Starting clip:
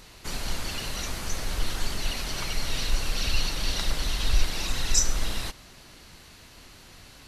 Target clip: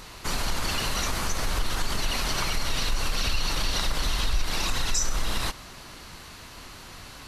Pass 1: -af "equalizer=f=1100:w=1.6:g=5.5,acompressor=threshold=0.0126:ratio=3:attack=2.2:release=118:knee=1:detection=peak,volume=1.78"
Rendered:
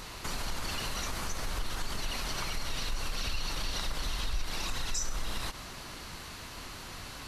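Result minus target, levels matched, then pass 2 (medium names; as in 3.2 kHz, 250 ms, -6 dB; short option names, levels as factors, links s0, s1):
compression: peak gain reduction +7.5 dB
-af "equalizer=f=1100:w=1.6:g=5.5,acompressor=threshold=0.0473:ratio=3:attack=2.2:release=118:knee=1:detection=peak,volume=1.78"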